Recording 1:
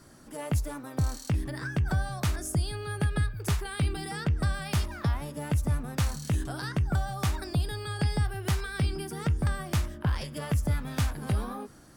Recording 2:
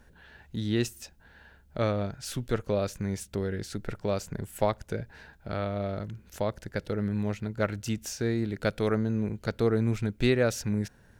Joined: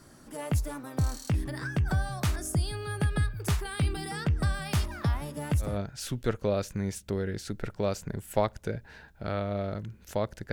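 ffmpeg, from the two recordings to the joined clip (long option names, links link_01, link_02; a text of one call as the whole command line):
ffmpeg -i cue0.wav -i cue1.wav -filter_complex "[0:a]apad=whole_dur=10.52,atrim=end=10.52,atrim=end=5.79,asetpts=PTS-STARTPTS[link_01];[1:a]atrim=start=1.84:end=6.77,asetpts=PTS-STARTPTS[link_02];[link_01][link_02]acrossfade=duration=0.2:curve1=tri:curve2=tri" out.wav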